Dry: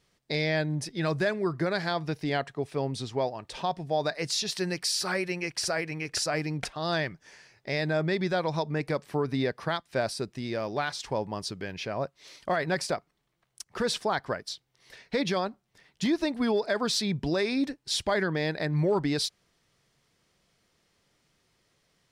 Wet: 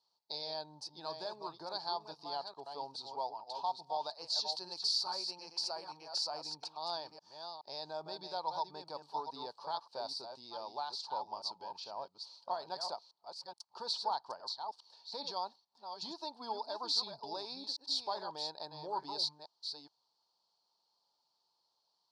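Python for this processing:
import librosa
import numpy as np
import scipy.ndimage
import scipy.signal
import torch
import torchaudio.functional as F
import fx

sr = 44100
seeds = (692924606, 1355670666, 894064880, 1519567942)

y = fx.reverse_delay(x, sr, ms=423, wet_db=-7)
y = fx.double_bandpass(y, sr, hz=2000.0, octaves=2.3)
y = y * 10.0 ** (1.0 / 20.0)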